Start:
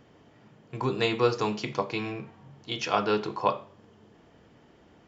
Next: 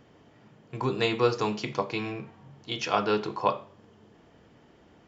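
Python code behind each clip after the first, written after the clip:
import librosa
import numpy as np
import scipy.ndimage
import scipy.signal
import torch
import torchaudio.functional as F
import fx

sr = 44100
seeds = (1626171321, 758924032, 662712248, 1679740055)

y = x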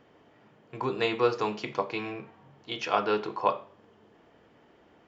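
y = fx.bass_treble(x, sr, bass_db=-8, treble_db=-8)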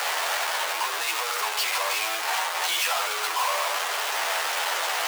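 y = np.sign(x) * np.sqrt(np.mean(np.square(x)))
y = scipy.signal.sosfilt(scipy.signal.butter(4, 720.0, 'highpass', fs=sr, output='sos'), y)
y = fx.doubler(y, sr, ms=12.0, db=-5)
y = F.gain(torch.from_numpy(y), 8.0).numpy()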